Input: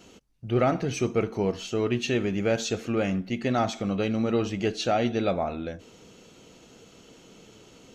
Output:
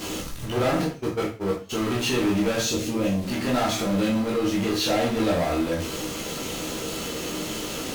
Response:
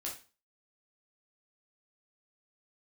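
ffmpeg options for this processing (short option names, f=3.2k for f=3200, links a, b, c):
-filter_complex "[0:a]aeval=exprs='val(0)+0.5*0.0237*sgn(val(0))':c=same,asplit=3[a][b][c];[a]afade=t=out:st=0.84:d=0.02[d];[b]agate=range=-35dB:threshold=-22dB:ratio=16:detection=peak,afade=t=in:st=0.84:d=0.02,afade=t=out:st=1.69:d=0.02[e];[c]afade=t=in:st=1.69:d=0.02[f];[d][e][f]amix=inputs=3:normalize=0,asettb=1/sr,asplit=3[g][h][i];[g]atrim=end=2.654[j];[h]atrim=start=2.65:end=3.25,asetpts=PTS-STARTPTS,afade=t=in:d=0.004:c=qsin,afade=t=out:st=0.596:d=0.004:c=qsin,equalizer=f=1.2k:t=o:w=1.7:g=-12[k];[i]atrim=start=3.246[l];[j][k]acrossfade=d=0.004:c1=hsin:c2=qsin[m];[m][l]acrossfade=d=0.004:c1=qsin:c2=hsin,asettb=1/sr,asplit=3[n][o][p];[n]atrim=end=4.034[q];[o]atrim=start=4.03:end=4.68,asetpts=PTS-STARTPTS,afade=t=in:d=0.004:c=qsin,afade=t=out:st=0.646:d=0.004:c=qsin,acompressor=threshold=-25dB:ratio=2[r];[p]atrim=start=4.676[s];[q][r]acrossfade=d=0.004:c1=hsin:c2=qsin[t];[t][s]acrossfade=d=0.004:c1=qsin:c2=hsin,asoftclip=type=tanh:threshold=-25.5dB[u];[1:a]atrim=start_sample=2205,asetrate=41454,aresample=44100[v];[u][v]afir=irnorm=-1:irlink=0,volume=6dB"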